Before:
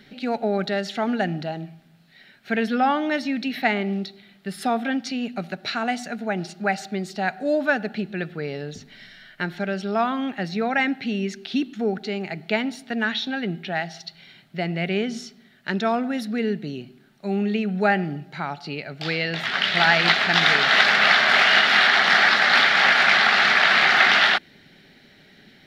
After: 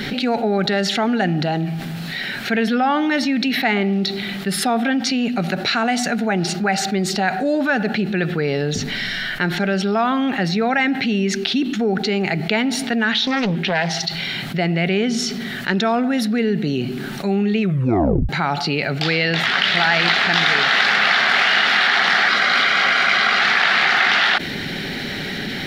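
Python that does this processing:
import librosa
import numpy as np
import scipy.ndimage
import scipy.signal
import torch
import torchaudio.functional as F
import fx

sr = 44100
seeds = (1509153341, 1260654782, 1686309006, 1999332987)

y = fx.doppler_dist(x, sr, depth_ms=0.53, at=(13.12, 14.06))
y = fx.notch_comb(y, sr, f0_hz=880.0, at=(22.28, 23.41))
y = fx.edit(y, sr, fx.tape_stop(start_s=17.61, length_s=0.68), tone=tone)
y = fx.notch(y, sr, hz=620.0, q=13.0)
y = fx.env_flatten(y, sr, amount_pct=70)
y = y * librosa.db_to_amplitude(-1.5)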